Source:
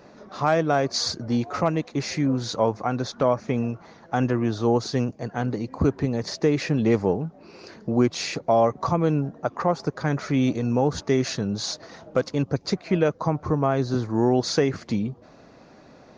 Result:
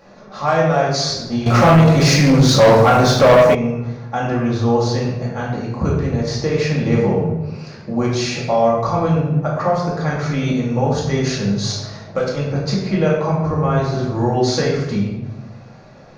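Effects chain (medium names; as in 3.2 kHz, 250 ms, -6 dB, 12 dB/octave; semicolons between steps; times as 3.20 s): peaking EQ 290 Hz -11 dB 0.42 oct; simulated room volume 440 m³, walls mixed, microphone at 2.3 m; 1.46–3.55 s: waveshaping leveller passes 3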